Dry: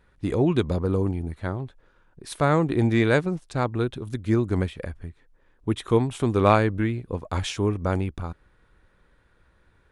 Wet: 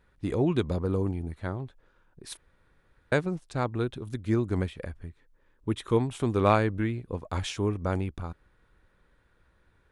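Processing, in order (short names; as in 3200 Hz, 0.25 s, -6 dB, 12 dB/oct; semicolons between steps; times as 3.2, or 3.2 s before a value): 2.37–3.12 room tone; 5.03–5.97 Butterworth band-stop 730 Hz, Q 7.2; gain -4 dB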